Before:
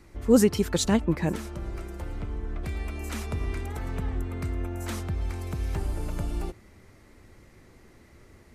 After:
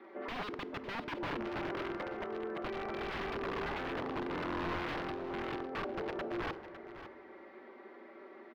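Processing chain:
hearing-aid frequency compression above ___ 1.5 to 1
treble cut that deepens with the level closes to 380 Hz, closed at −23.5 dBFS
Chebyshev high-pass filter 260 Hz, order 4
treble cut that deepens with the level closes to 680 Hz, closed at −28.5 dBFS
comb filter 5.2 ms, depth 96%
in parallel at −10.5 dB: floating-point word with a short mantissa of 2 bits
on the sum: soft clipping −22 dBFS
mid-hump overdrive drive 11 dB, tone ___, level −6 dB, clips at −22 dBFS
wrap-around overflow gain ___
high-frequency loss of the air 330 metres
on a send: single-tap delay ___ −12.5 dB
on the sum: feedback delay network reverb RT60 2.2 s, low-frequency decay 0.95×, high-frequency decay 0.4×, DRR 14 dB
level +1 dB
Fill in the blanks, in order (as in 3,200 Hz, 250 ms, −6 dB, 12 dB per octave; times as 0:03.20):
2,300 Hz, 1,000 Hz, 31.5 dB, 554 ms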